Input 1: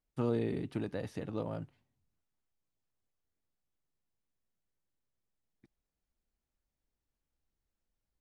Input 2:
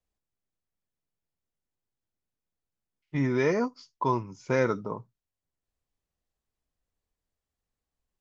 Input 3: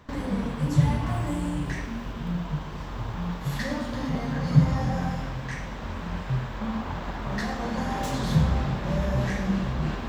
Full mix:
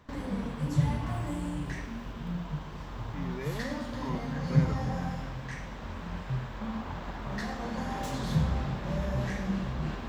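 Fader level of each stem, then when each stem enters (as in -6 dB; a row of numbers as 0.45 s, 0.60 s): mute, -14.0 dB, -5.5 dB; mute, 0.00 s, 0.00 s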